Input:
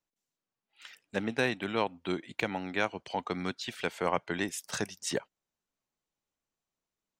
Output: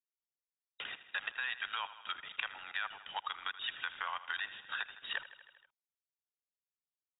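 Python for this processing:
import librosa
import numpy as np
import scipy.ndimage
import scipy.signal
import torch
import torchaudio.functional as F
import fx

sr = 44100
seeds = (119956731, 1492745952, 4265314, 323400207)

p1 = fx.spec_quant(x, sr, step_db=15)
p2 = scipy.signal.sosfilt(scipy.signal.butter(4, 1200.0, 'highpass', fs=sr, output='sos'), p1)
p3 = fx.peak_eq(p2, sr, hz=2200.0, db=-13.5, octaves=0.21)
p4 = fx.level_steps(p3, sr, step_db=15)
p5 = fx.quant_dither(p4, sr, seeds[0], bits=10, dither='none')
p6 = fx.brickwall_lowpass(p5, sr, high_hz=3800.0)
p7 = p6 + fx.echo_feedback(p6, sr, ms=79, feedback_pct=57, wet_db=-15.5, dry=0)
p8 = fx.band_squash(p7, sr, depth_pct=70)
y = p8 * librosa.db_to_amplitude(8.5)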